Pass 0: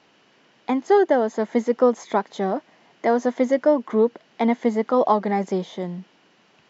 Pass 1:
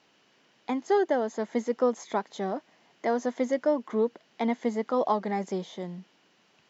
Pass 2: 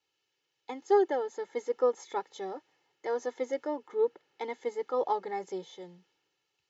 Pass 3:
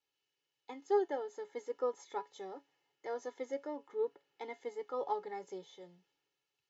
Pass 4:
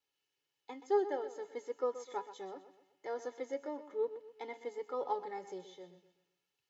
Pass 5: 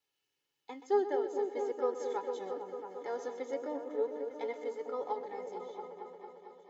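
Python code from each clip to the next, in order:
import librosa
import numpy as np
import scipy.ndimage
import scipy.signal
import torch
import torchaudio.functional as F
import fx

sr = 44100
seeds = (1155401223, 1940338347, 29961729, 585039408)

y1 = fx.high_shelf(x, sr, hz=4100.0, db=7.0)
y1 = y1 * librosa.db_to_amplitude(-7.5)
y2 = y1 + 0.92 * np.pad(y1, (int(2.3 * sr / 1000.0), 0))[:len(y1)]
y2 = fx.band_widen(y2, sr, depth_pct=40)
y2 = y2 * librosa.db_to_amplitude(-7.5)
y3 = fx.comb_fb(y2, sr, f0_hz=140.0, decay_s=0.17, harmonics='all', damping=0.0, mix_pct=60)
y3 = y3 * librosa.db_to_amplitude(-2.5)
y4 = fx.echo_feedback(y3, sr, ms=126, feedback_pct=41, wet_db=-13)
y5 = fx.fade_out_tail(y4, sr, length_s=2.22)
y5 = fx.echo_opening(y5, sr, ms=225, hz=400, octaves=1, feedback_pct=70, wet_db=-3)
y5 = y5 * librosa.db_to_amplitude(1.5)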